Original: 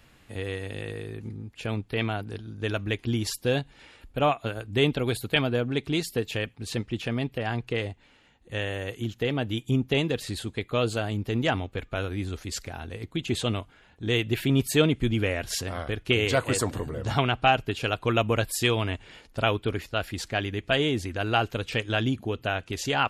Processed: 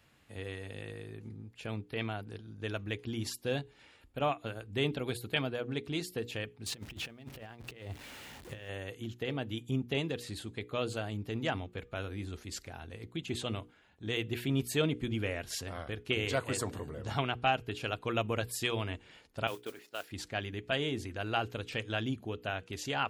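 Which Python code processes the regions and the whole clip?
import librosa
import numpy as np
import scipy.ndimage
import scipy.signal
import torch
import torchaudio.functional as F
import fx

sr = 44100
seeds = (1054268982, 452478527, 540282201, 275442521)

y = fx.chain(x, sr, fx.zero_step(step_db=-42.0),
    fx.over_compress(threshold_db=-34.0, ratio=-0.5), at=(6.66, 8.69))
y = fx.chain(y, sr, fx.highpass(hz=330.0, slope=12),
    fx.level_steps(step_db=10),
    fx.mod_noise(seeds[0], snr_db=15), at=(19.47, 20.11))
y = scipy.signal.sosfilt(scipy.signal.butter(2, 53.0, 'highpass', fs=sr, output='sos'), y)
y = fx.hum_notches(y, sr, base_hz=60, count=8)
y = y * 10.0 ** (-8.0 / 20.0)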